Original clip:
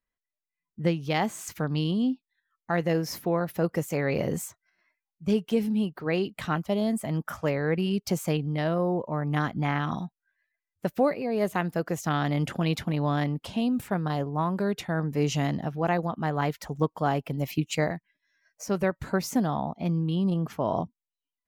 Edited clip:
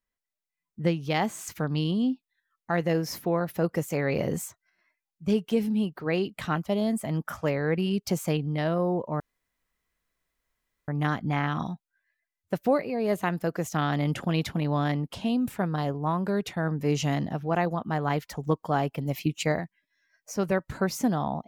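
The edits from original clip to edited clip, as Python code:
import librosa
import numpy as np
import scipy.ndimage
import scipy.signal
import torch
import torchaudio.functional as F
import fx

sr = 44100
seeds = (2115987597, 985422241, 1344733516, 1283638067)

y = fx.edit(x, sr, fx.insert_room_tone(at_s=9.2, length_s=1.68), tone=tone)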